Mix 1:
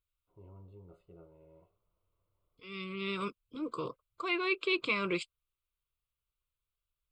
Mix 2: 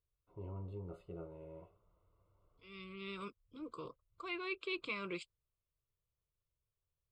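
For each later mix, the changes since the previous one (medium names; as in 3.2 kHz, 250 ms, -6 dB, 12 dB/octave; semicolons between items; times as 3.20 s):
first voice +8.0 dB; second voice -9.5 dB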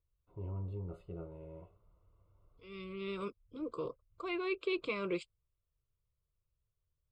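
second voice: add peaking EQ 510 Hz +9.5 dB 1.4 oct; master: add bass shelf 160 Hz +8 dB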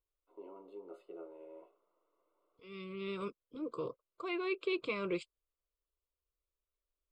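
first voice: add steep high-pass 290 Hz 36 dB/octave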